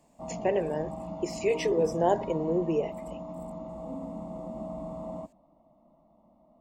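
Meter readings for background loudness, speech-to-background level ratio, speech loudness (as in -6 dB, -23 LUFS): -39.0 LUFS, 10.0 dB, -29.0 LUFS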